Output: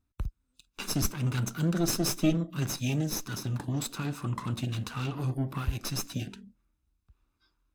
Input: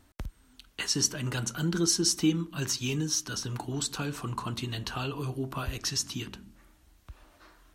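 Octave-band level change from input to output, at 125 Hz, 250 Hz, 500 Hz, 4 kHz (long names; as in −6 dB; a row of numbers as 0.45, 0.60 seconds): +3.5, +0.5, −0.5, −6.0 decibels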